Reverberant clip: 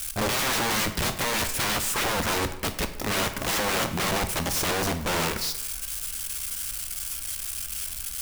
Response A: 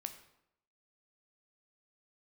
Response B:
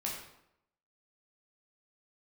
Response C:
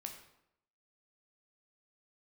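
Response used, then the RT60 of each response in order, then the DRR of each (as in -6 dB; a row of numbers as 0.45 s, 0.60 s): A; 0.80 s, 0.80 s, 0.80 s; 7.0 dB, -3.5 dB, 3.0 dB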